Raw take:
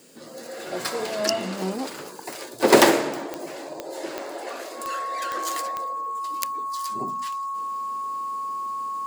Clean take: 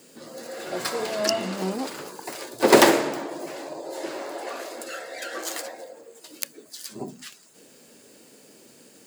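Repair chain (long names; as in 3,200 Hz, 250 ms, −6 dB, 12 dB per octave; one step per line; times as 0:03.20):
click removal
notch filter 1,100 Hz, Q 30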